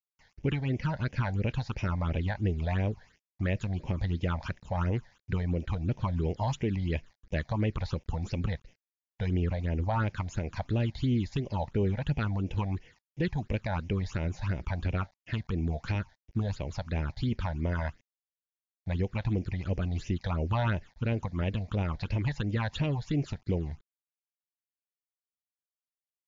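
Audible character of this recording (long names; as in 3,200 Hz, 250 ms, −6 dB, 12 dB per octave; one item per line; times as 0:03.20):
a quantiser's noise floor 10 bits, dither none
phaser sweep stages 8, 2.9 Hz, lowest notch 350–1,300 Hz
MP3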